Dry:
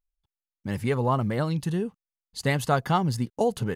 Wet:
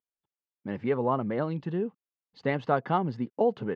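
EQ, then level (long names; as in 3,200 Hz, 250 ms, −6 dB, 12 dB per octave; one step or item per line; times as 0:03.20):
band-pass filter 320–3,100 Hz
high-frequency loss of the air 160 metres
low-shelf EQ 410 Hz +11 dB
−3.5 dB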